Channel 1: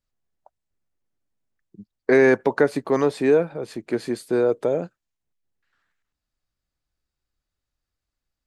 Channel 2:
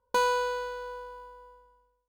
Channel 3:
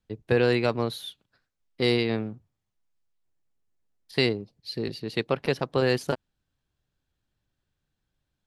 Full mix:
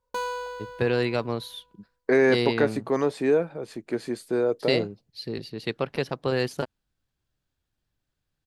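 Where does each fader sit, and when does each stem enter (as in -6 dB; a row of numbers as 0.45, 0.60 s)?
-4.0, -5.0, -2.0 dB; 0.00, 0.00, 0.50 s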